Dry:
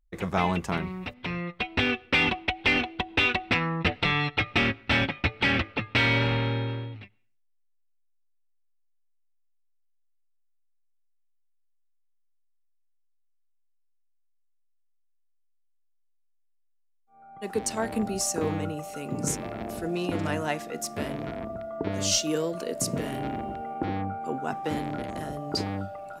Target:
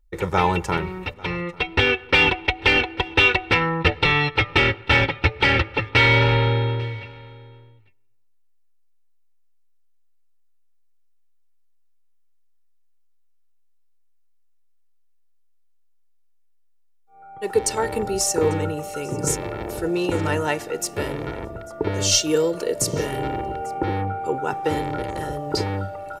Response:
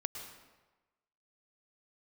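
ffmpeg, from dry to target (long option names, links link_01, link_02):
-filter_complex "[0:a]aecho=1:1:2.2:0.69,aecho=1:1:845:0.0708,asplit=2[link_01][link_02];[1:a]atrim=start_sample=2205,lowpass=2300[link_03];[link_02][link_03]afir=irnorm=-1:irlink=0,volume=-17dB[link_04];[link_01][link_04]amix=inputs=2:normalize=0,volume=4.5dB"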